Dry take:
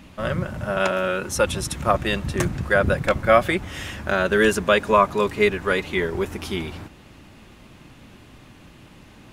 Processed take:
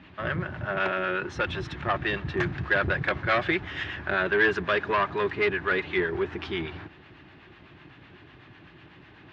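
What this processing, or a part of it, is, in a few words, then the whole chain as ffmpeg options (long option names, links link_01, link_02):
guitar amplifier with harmonic tremolo: -filter_complex "[0:a]acrossover=split=700[link_01][link_02];[link_01]aeval=exprs='val(0)*(1-0.5/2+0.5/2*cos(2*PI*8*n/s))':channel_layout=same[link_03];[link_02]aeval=exprs='val(0)*(1-0.5/2-0.5/2*cos(2*PI*8*n/s))':channel_layout=same[link_04];[link_03][link_04]amix=inputs=2:normalize=0,asoftclip=type=tanh:threshold=-18.5dB,highpass=85,equalizer=frequency=220:width_type=q:width=4:gain=-10,equalizer=frequency=360:width_type=q:width=4:gain=4,equalizer=frequency=530:width_type=q:width=4:gain=-7,equalizer=frequency=1700:width_type=q:width=4:gain=7,lowpass=frequency=3800:width=0.5412,lowpass=frequency=3800:width=1.3066,asettb=1/sr,asplit=3[link_05][link_06][link_07];[link_05]atrim=end=2.414[link_08];[link_06]atrim=start=2.41:end=3.84,asetpts=PTS-STARTPTS,afade=type=in:duration=0.004:curve=qsin,afade=type=out:start_time=1.426:duration=0.004:curve=qsin,equalizer=frequency=12000:width_type=o:width=2.8:gain=4[link_09];[link_07]atrim=start=3.836[link_10];[link_08][link_09]acrossfade=duration=0.004:curve1=hsin:curve2=qsin[link_11];[link_11][link_10]acrossfade=duration=0.004:curve1=qsin:curve2=hsin"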